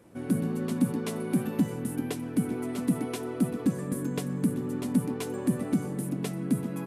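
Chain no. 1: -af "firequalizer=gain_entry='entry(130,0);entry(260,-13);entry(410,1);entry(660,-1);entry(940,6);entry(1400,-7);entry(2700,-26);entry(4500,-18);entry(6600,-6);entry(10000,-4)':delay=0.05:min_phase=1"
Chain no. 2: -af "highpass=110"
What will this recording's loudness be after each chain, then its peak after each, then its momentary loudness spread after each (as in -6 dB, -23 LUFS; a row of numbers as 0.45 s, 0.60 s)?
-35.5 LUFS, -30.5 LUFS; -17.5 dBFS, -13.5 dBFS; 3 LU, 5 LU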